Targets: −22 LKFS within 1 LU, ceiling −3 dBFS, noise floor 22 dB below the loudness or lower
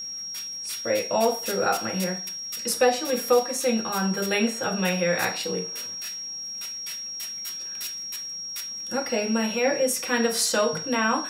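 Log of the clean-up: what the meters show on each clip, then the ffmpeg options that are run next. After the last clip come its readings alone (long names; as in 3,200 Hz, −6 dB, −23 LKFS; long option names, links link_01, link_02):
interfering tone 5,600 Hz; level of the tone −32 dBFS; integrated loudness −25.5 LKFS; sample peak −8.5 dBFS; target loudness −22.0 LKFS
→ -af "bandreject=frequency=5600:width=30"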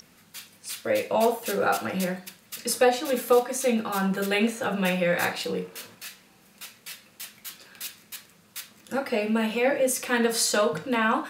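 interfering tone none found; integrated loudness −25.0 LKFS; sample peak −8.5 dBFS; target loudness −22.0 LKFS
→ -af "volume=3dB"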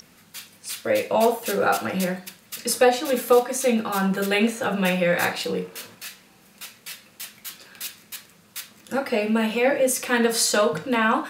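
integrated loudness −22.0 LKFS; sample peak −5.5 dBFS; background noise floor −55 dBFS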